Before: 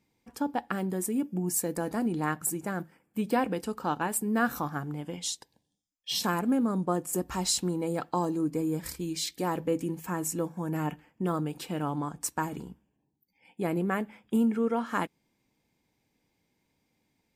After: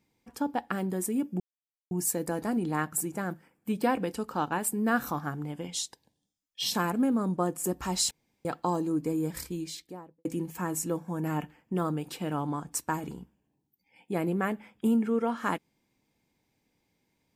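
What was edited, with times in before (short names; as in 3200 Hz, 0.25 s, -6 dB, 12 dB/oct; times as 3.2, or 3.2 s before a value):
1.4 insert silence 0.51 s
7.6–7.94 room tone
8.87–9.74 studio fade out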